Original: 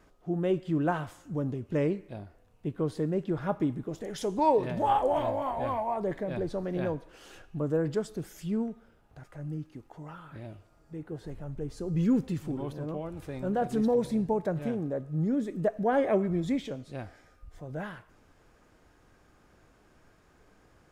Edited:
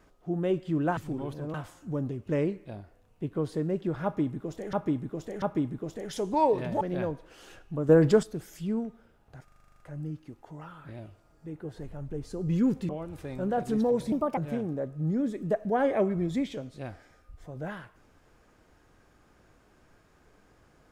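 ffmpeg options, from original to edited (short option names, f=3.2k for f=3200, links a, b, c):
-filter_complex "[0:a]asplit=20[a][b][c][d][e][f][g][h][i][j][k][l][m][n][o][p][q][r][s][t];[a]atrim=end=0.972[u];[b]atrim=start=12.358:end=12.932[v];[c]atrim=start=0.968:end=4.162[w];[d]atrim=start=3.468:end=4.162[x];[e]atrim=start=3.468:end=4.862[y];[f]atrim=start=6.638:end=7.722[z];[g]atrim=start=7.718:end=8.062,asetpts=PTS-STARTPTS,volume=9dB[aa];[h]atrim=start=8.058:end=9.312[ab];[i]atrim=start=9.268:end=9.312[ac];[j]atrim=start=9.268:end=9.312[ad];[k]atrim=start=9.268:end=9.312[ae];[l]atrim=start=9.268:end=9.312[af];[m]atrim=start=9.268:end=9.312[ag];[n]atrim=start=9.268:end=9.312[ah];[o]atrim=start=9.268:end=9.312[ai];[p]atrim=start=9.268:end=9.312[aj];[q]atrim=start=9.268:end=12.362[ak];[r]atrim=start=12.928:end=14.164[al];[s]atrim=start=14.16:end=14.51,asetpts=PTS-STARTPTS,asetrate=60858,aresample=44100[am];[t]atrim=start=14.506[an];[u][v]acrossfade=d=0.004:c1=hsin:c2=hsin[ao];[ao][w]acrossfade=d=0.004:c1=hsin:c2=hsin[ap];[ap][x]acrossfade=d=0.004:c1=hsin:c2=hsin[aq];[aq][y]acrossfade=d=0.004:c1=hsin:c2=hsin[ar];[ar][z]acrossfade=d=0.004:c1=hsin:c2=hsin[as];[as][aa]acrossfade=d=0.004:c1=hsin:c2=hsin[at];[at][ab]acrossfade=d=0.004:c1=hsin:c2=hsin[au];[au][ac]acrossfade=d=0.004:c1=hsin:c2=hsin[av];[av][ad]acrossfade=d=0.004:c1=hsin:c2=hsin[aw];[aw][ae]acrossfade=d=0.004:c1=hsin:c2=hsin[ax];[ax][af]acrossfade=d=0.004:c1=hsin:c2=hsin[ay];[ay][ag]acrossfade=d=0.004:c1=hsin:c2=hsin[az];[az][ah]acrossfade=d=0.004:c1=hsin:c2=hsin[ba];[ba][ai]acrossfade=d=0.004:c1=hsin:c2=hsin[bb];[bb][aj]acrossfade=d=0.004:c1=hsin:c2=hsin[bc];[bc][ak]acrossfade=d=0.004:c1=hsin:c2=hsin[bd];[bd][al]acrossfade=d=0.004:c1=hsin:c2=hsin[be];[be][am]acrossfade=d=0.004:c1=hsin:c2=hsin[bf];[bf][an]acrossfade=d=0.004:c1=hsin:c2=hsin"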